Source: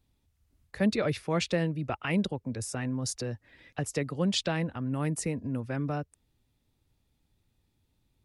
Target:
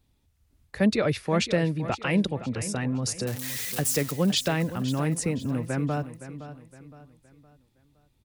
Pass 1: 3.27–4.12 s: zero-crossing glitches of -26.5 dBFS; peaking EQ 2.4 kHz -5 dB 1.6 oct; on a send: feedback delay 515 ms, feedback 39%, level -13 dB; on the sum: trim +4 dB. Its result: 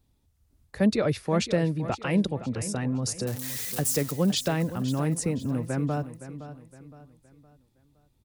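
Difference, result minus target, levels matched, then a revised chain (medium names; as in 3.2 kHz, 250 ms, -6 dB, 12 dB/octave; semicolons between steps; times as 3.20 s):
2 kHz band -3.5 dB
3.27–4.12 s: zero-crossing glitches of -26.5 dBFS; on a send: feedback delay 515 ms, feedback 39%, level -13 dB; on the sum: trim +4 dB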